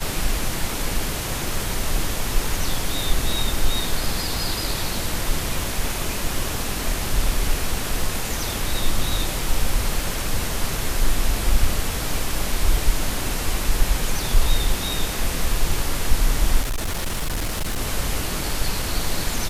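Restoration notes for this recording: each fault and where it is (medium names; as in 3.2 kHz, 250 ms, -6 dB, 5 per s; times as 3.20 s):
16.61–17.81 s: clipped -20.5 dBFS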